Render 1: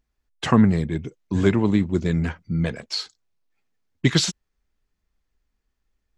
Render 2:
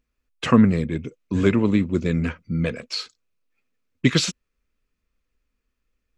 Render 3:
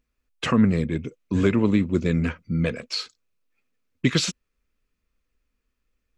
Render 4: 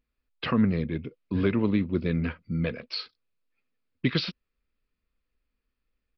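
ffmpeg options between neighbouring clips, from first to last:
ffmpeg -i in.wav -af "equalizer=frequency=250:width_type=o:width=0.33:gain=6,equalizer=frequency=500:width_type=o:width=0.33:gain=7,equalizer=frequency=800:width_type=o:width=0.33:gain=-7,equalizer=frequency=1250:width_type=o:width=0.33:gain=5,equalizer=frequency=2500:width_type=o:width=0.33:gain=8,volume=-1.5dB" out.wav
ffmpeg -i in.wav -af "alimiter=limit=-8dB:level=0:latency=1:release=164" out.wav
ffmpeg -i in.wav -af "aresample=11025,aresample=44100,volume=-4.5dB" out.wav

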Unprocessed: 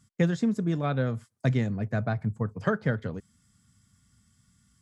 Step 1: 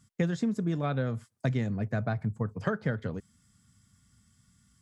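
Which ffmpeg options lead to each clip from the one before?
ffmpeg -i in.wav -af "acompressor=threshold=-27dB:ratio=2" out.wav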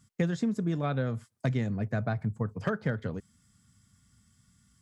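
ffmpeg -i in.wav -af "volume=18.5dB,asoftclip=hard,volume=-18.5dB" out.wav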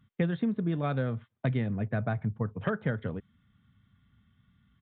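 ffmpeg -i in.wav -af "aresample=8000,aresample=44100" out.wav

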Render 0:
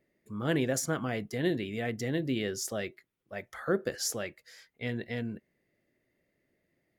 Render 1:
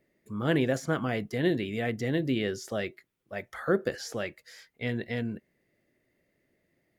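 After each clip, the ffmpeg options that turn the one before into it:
ffmpeg -i in.wav -filter_complex "[0:a]acrossover=split=3900[link_01][link_02];[link_02]acompressor=threshold=-49dB:ratio=4:attack=1:release=60[link_03];[link_01][link_03]amix=inputs=2:normalize=0,volume=3dB" out.wav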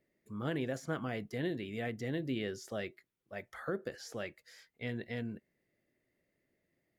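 ffmpeg -i in.wav -af "alimiter=limit=-18.5dB:level=0:latency=1:release=333,volume=-7dB" out.wav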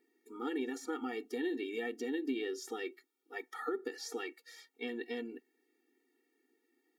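ffmpeg -i in.wav -af "acompressor=threshold=-37dB:ratio=6,afftfilt=real='re*eq(mod(floor(b*sr/1024/240),2),1)':imag='im*eq(mod(floor(b*sr/1024/240),2),1)':win_size=1024:overlap=0.75,volume=7dB" out.wav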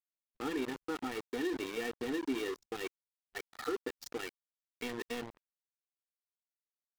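ffmpeg -i in.wav -af "aeval=exprs='val(0)*gte(abs(val(0)),0.0112)':channel_layout=same,anlmdn=0.0251,volume=1dB" out.wav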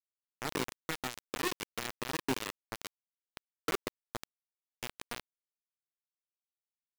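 ffmpeg -i in.wav -af "acrusher=bits=4:mix=0:aa=0.000001" out.wav

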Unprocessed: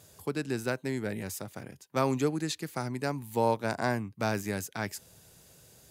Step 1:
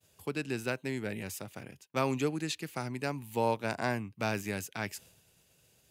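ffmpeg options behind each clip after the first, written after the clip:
ffmpeg -i in.wav -af "agate=range=-33dB:threshold=-50dB:ratio=3:detection=peak,equalizer=frequency=2700:width=2.4:gain=8.5,volume=-3dB" out.wav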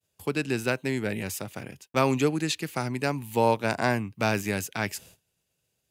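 ffmpeg -i in.wav -af "agate=range=-18dB:threshold=-59dB:ratio=16:detection=peak,volume=7dB" out.wav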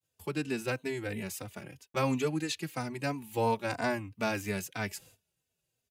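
ffmpeg -i in.wav -filter_complex "[0:a]asplit=2[link_01][link_02];[link_02]adelay=3.2,afreqshift=-3[link_03];[link_01][link_03]amix=inputs=2:normalize=1,volume=-3dB" out.wav

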